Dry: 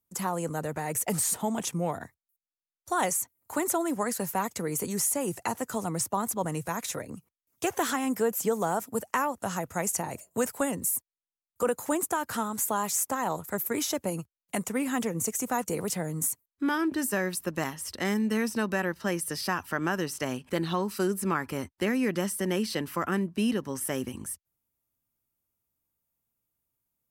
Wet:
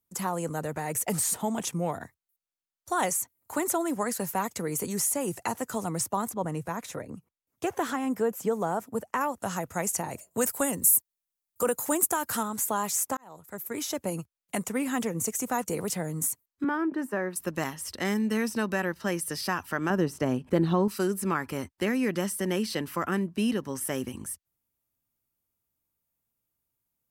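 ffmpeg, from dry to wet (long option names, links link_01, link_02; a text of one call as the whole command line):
ffmpeg -i in.wav -filter_complex "[0:a]asettb=1/sr,asplit=3[link_01][link_02][link_03];[link_01]atrim=end=6.294[link_04];[link_02]atrim=start=6.29:end=9.21,asetpts=PTS-STARTPTS,afade=type=in:duration=0.004:curve=qsin,afade=type=out:start_time=2.916:duration=0.004:curve=qsin,highshelf=frequency=2400:gain=-9[link_05];[link_03]atrim=start=9.206[link_06];[link_04][link_05]acrossfade=duration=0.004:curve1=hsin:curve2=qsin[link_07];[link_07][link_06]acrossfade=duration=0.004:curve1=qsin:curve2=hsin,asettb=1/sr,asplit=3[link_08][link_09][link_10];[link_08]atrim=end=10.414[link_11];[link_09]atrim=start=10.41:end=12.43,asetpts=PTS-STARTPTS,afade=type=in:duration=0.004:curve=qsin,afade=type=out:start_time=2.016:duration=0.004:curve=qsin,highshelf=frequency=7500:gain=11[link_12];[link_10]atrim=start=12.426[link_13];[link_11][link_12]acrossfade=duration=0.004:curve1=hsin:curve2=qsin[link_14];[link_14][link_13]acrossfade=duration=0.004:curve1=qsin:curve2=hsin,asettb=1/sr,asplit=3[link_15][link_16][link_17];[link_15]atrim=end=16.644[link_18];[link_16]atrim=start=16.64:end=17.36,asetpts=PTS-STARTPTS,afade=type=in:duration=0.004:curve=qsin,afade=type=out:start_time=0.716:duration=0.004:curve=qsin,acrossover=split=170 2000:gain=0.0794 1 0.126[link_19][link_20][link_21];[link_19][link_20][link_21]amix=inputs=3:normalize=0[link_22];[link_17]atrim=start=17.356[link_23];[link_18][link_22]acrossfade=duration=0.004:curve1=hsin:curve2=qsin[link_24];[link_24][link_23]acrossfade=duration=0.004:curve1=qsin:curve2=hsin,asettb=1/sr,asplit=3[link_25][link_26][link_27];[link_25]atrim=end=19.904[link_28];[link_26]atrim=start=19.9:end=20.88,asetpts=PTS-STARTPTS,afade=type=in:duration=0.004:curve=qsin,afade=type=out:start_time=0.976:duration=0.004:curve=qsin,tiltshelf=frequency=1100:gain=7[link_29];[link_27]atrim=start=20.876[link_30];[link_28][link_29]acrossfade=duration=0.004:curve1=hsin:curve2=qsin[link_31];[link_31][link_30]acrossfade=duration=0.004:curve1=qsin:curve2=hsin,asplit=2[link_32][link_33];[link_32]atrim=end=13.17,asetpts=PTS-STARTPTS,afade=type=out:start_time=13.166:duration=0.004:curve=hsin[link_34];[link_33]atrim=start=13.17,asetpts=PTS-STARTPTS,afade=type=in:duration=0.96[link_35];[link_34][link_35]concat=n=2:v=0:a=1" out.wav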